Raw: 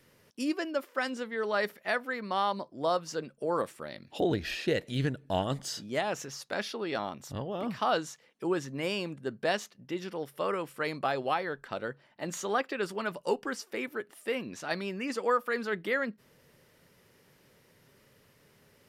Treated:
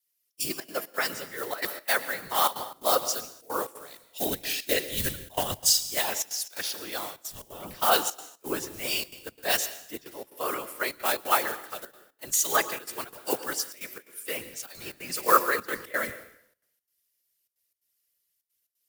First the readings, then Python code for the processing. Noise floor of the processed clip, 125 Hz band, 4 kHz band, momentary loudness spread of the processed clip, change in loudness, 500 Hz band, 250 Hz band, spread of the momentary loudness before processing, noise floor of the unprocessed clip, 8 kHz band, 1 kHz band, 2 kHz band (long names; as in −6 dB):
−77 dBFS, −7.5 dB, +8.5 dB, 17 LU, +5.0 dB, −1.5 dB, −5.5 dB, 8 LU, −64 dBFS, +16.0 dB, +4.0 dB, +3.0 dB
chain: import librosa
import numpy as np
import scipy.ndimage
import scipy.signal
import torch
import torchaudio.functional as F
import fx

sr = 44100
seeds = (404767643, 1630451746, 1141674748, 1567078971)

y = fx.block_float(x, sr, bits=5)
y = fx.riaa(y, sr, side='recording')
y = fx.whisperise(y, sr, seeds[0])
y = fx.peak_eq(y, sr, hz=13000.0, db=3.5, octaves=1.1)
y = fx.rev_plate(y, sr, seeds[1], rt60_s=1.3, hf_ratio=0.9, predelay_ms=105, drr_db=9.0)
y = fx.step_gate(y, sr, bpm=176, pattern='xxxxxxx.xx.', floor_db=-12.0, edge_ms=4.5)
y = fx.band_widen(y, sr, depth_pct=100)